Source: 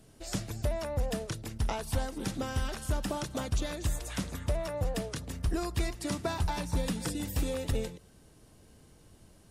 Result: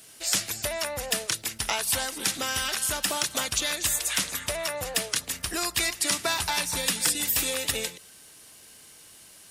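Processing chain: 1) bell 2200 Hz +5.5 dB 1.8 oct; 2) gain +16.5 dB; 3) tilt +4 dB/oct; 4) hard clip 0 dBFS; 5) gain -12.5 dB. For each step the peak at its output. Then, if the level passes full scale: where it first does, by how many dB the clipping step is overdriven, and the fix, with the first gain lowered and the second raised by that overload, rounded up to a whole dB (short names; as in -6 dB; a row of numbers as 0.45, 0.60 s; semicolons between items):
-17.5, -1.0, +7.0, 0.0, -12.5 dBFS; step 3, 7.0 dB; step 2 +9.5 dB, step 5 -5.5 dB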